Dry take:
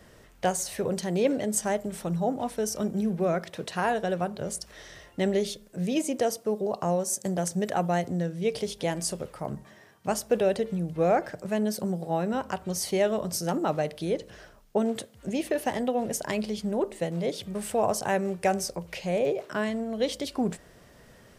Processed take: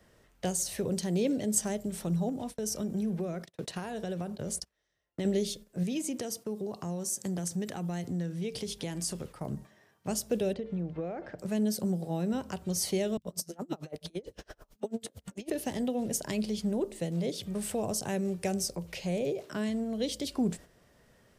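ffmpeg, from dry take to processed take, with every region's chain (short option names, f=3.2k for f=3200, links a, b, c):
-filter_complex "[0:a]asettb=1/sr,asplit=3[a][b][c];[a]atrim=end=2.294[d];[b]atrim=start=2.29:end=5.25,asetpts=PTS-STARTPTS,afade=t=in:d=0.004:c=qsin,afade=t=out:st=2.956:d=0.004:c=qsin,acompressor=threshold=-28dB:ratio=3:attack=3.2:release=140:knee=1:detection=peak,agate=range=-25dB:threshold=-41dB:ratio=16:release=100:detection=peak[e];[c]atrim=start=5.246[f];[d][e]acrossfade=d=0.004:c1=hsin:c2=qsin[g];[g][f]acrossfade=d=0.004:c1=qsin:c2=hsin,asettb=1/sr,asplit=3[h][i][j];[h]atrim=end=5.834[k];[i]atrim=start=5.83:end=9.37,asetpts=PTS-STARTPTS,afade=t=in:d=0.004:c=qsin,afade=t=out:st=3.536:d=0.004:c=qsin,equalizer=f=590:t=o:w=0.65:g=-6.5,acompressor=threshold=-31dB:ratio=2:attack=3.2:release=140:knee=1:detection=peak[l];[j]atrim=start=9.366[m];[k][l]acrossfade=d=0.004:c1=hsin:c2=qsin[n];[n][m]acrossfade=d=0.004:c1=qsin:c2=hsin,asettb=1/sr,asplit=3[o][p][q];[o]atrim=end=10.534[r];[p]atrim=start=10.53:end=11.39,asetpts=PTS-STARTPTS,afade=t=in:d=0.004:c=qsin,afade=t=out:st=0.856:d=0.004:c=qsin,lowpass=2.5k,equalizer=f=140:w=1.1:g=-5,acompressor=threshold=-27dB:ratio=6:attack=3.2:release=140:knee=1:detection=peak[s];[q]atrim=start=11.386[t];[r][s]acrossfade=d=0.004:c1=hsin:c2=qsin[u];[u][t]acrossfade=d=0.004:c1=qsin:c2=hsin,asettb=1/sr,asplit=3[v][w][x];[v]atrim=end=13.174[y];[w]atrim=start=13.17:end=15.5,asetpts=PTS-STARTPTS,afade=t=in:d=0.004:c=qsin,afade=t=out:st=2.326:d=0.004:c=qsin,acompressor=mode=upward:threshold=-28dB:ratio=2.5:attack=3.2:release=140:knee=2.83:detection=peak,acrossover=split=170|1900[z][aa][ab];[ab]adelay=50[ac];[aa]adelay=80[ad];[z][ad][ac]amix=inputs=3:normalize=0,atrim=end_sample=102753,aeval=exprs='val(0)*pow(10,-31*(0.5-0.5*cos(2*PI*9*n/s))/20)':c=same[ae];[x]atrim=start=15.496[af];[y][ae]acrossfade=d=0.004:c1=hsin:c2=qsin[ag];[ag][af]acrossfade=d=0.004:c1=qsin:c2=hsin,agate=range=-9dB:threshold=-44dB:ratio=16:detection=peak,acrossover=split=400|3000[ah][ai][aj];[ai]acompressor=threshold=-46dB:ratio=2.5[ak];[ah][ak][aj]amix=inputs=3:normalize=0"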